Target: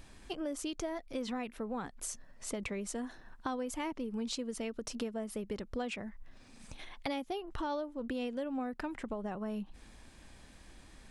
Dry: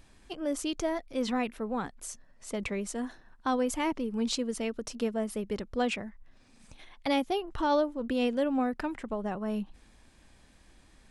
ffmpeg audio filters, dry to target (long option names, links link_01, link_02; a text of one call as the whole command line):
ffmpeg -i in.wav -af "acompressor=threshold=-40dB:ratio=4,volume=3.5dB" out.wav